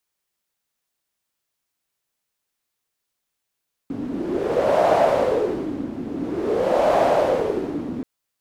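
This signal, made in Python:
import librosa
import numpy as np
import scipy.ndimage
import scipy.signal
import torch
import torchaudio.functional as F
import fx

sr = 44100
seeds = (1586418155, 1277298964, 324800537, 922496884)

y = fx.wind(sr, seeds[0], length_s=4.13, low_hz=260.0, high_hz=650.0, q=4.9, gusts=2, swing_db=12.0)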